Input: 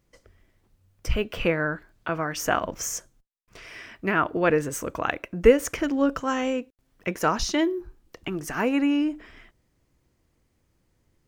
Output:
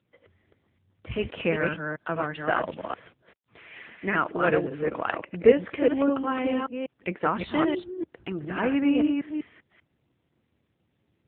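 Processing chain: reverse delay 0.196 s, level -3 dB; 3.92–6.18 low shelf 110 Hz -7 dB; gain -1.5 dB; AMR-NB 7.95 kbps 8000 Hz

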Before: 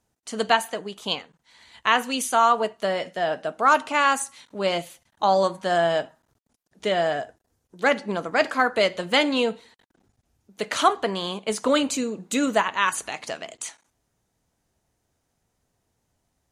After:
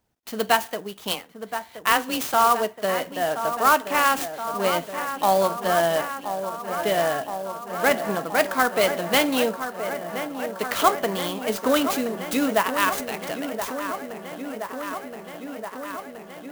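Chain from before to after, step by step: 1.12–2.34 frequency shift +19 Hz; on a send: dark delay 1.023 s, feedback 77%, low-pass 2200 Hz, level -9.5 dB; on the sum: clock jitter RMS 0.033 ms

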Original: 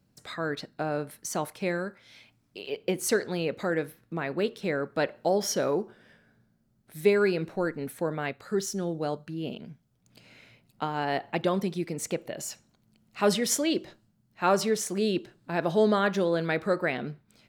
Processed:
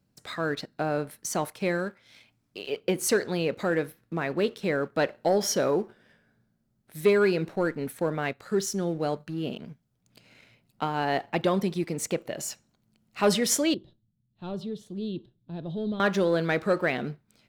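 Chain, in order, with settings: sample leveller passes 1; 13.74–16 EQ curve 120 Hz 0 dB, 2200 Hz -29 dB, 3500 Hz -7 dB, 5700 Hz -28 dB; gain -1.5 dB

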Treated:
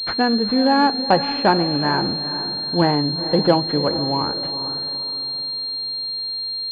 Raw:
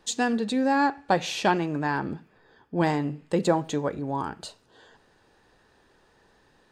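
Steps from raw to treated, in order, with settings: diffused feedback echo 0.451 s, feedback 40%, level -10.5 dB; pulse-width modulation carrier 4200 Hz; gain +6.5 dB

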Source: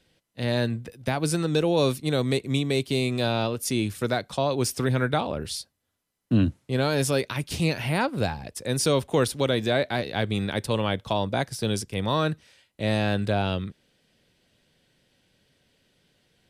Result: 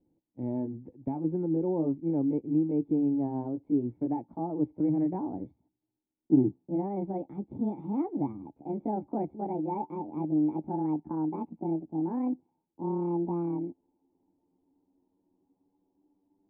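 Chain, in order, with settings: gliding pitch shift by +11.5 st starting unshifted; vocal tract filter u; gain +5 dB

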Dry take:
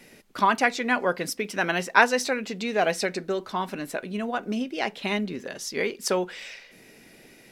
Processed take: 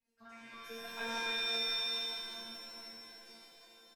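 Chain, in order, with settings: octaver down 1 oct, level -1 dB; Doppler pass-by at 1.93, 23 m/s, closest 7.4 m; on a send: feedback echo 88 ms, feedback 52%, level -5.5 dB; on the sum: harmonic-percussive split harmonic -5 dB; in parallel at 0 dB: compressor, threshold -40 dBFS, peak gain reduction 25 dB; on the sum: tempo 1.9×; chorus voices 2, 0.32 Hz, delay 12 ms, depth 3.5 ms; resonator 230 Hz, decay 0.78 s, mix 100%; shimmer reverb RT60 3.3 s, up +7 st, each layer -2 dB, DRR -2.5 dB

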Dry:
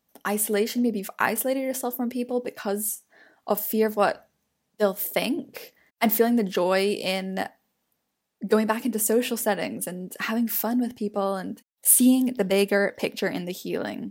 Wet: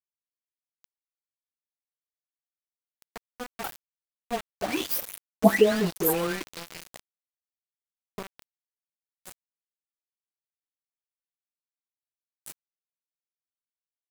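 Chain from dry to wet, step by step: spectral delay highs late, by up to 0.518 s; Doppler pass-by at 5.32, 38 m/s, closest 11 m; sample gate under -35 dBFS; gain +6.5 dB

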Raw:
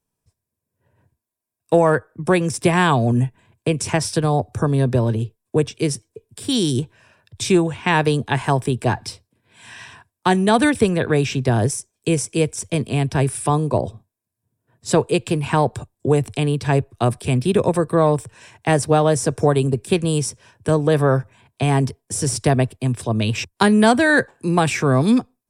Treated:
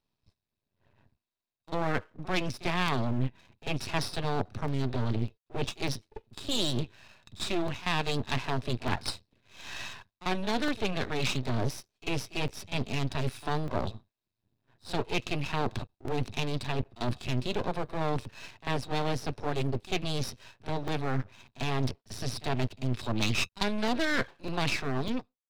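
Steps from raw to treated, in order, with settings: ending faded out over 1.19 s; reverse; compressor 6:1, threshold -23 dBFS, peak gain reduction 13.5 dB; reverse; resonant high shelf 5900 Hz -11 dB, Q 3; small resonant body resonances 2600/3800 Hz, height 12 dB, ringing for 70 ms; pre-echo 45 ms -18 dB; half-wave rectifier; notch 480 Hz, Q 12; crackling interface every 0.60 s, samples 128, zero, from 0.48; Doppler distortion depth 0.33 ms

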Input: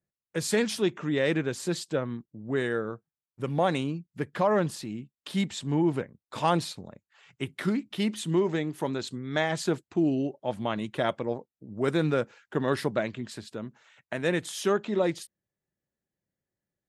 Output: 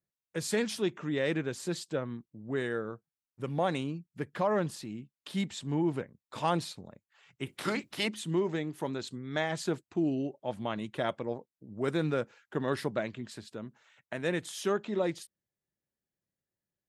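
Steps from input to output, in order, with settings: 7.46–8.07 spectral limiter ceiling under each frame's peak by 20 dB; gain -4.5 dB

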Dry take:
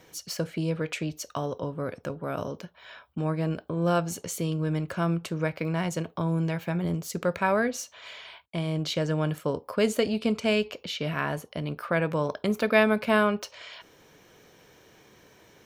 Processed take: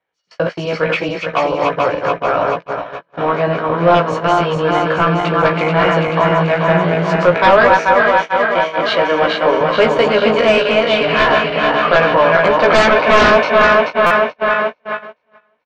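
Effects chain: regenerating reverse delay 0.217 s, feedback 81%, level -4 dB; 7.34–9.61 HPF 220 Hz 24 dB/oct; gate -31 dBFS, range -37 dB; three-band isolator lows -18 dB, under 580 Hz, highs -17 dB, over 4400 Hz; sine folder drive 13 dB, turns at -9 dBFS; tape spacing loss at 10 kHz 26 dB; doubler 17 ms -3.5 dB; stuck buffer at 14.06, samples 256, times 7; gain +5 dB

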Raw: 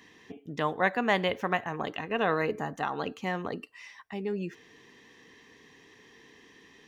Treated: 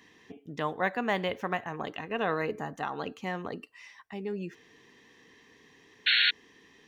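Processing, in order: de-esser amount 85%; painted sound noise, 6.06–6.31, 1400–4400 Hz -21 dBFS; gain -2.5 dB

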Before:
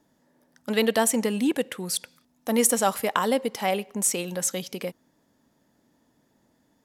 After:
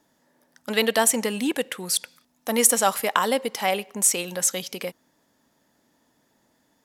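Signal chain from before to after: low shelf 500 Hz -8.5 dB; gain +4.5 dB

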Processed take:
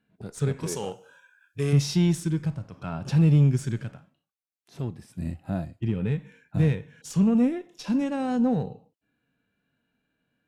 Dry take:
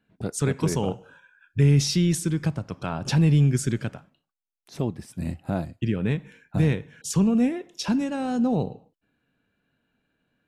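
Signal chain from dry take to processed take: added harmonics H 8 -30 dB, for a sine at -9.5 dBFS; 0.66–1.73 tone controls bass -12 dB, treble +11 dB; harmonic-percussive split percussive -11 dB

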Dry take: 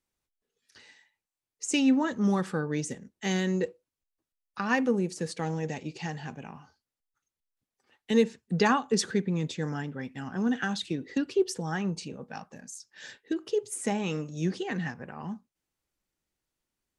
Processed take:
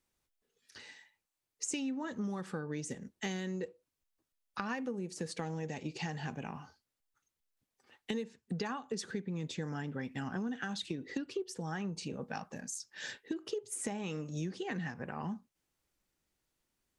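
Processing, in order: compressor 10:1, threshold -37 dBFS, peak gain reduction 20 dB; gain +2.5 dB

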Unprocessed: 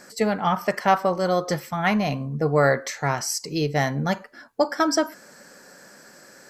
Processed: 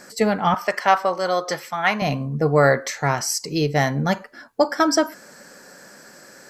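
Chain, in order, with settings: 0.54–2.02 weighting filter A; gain +3 dB

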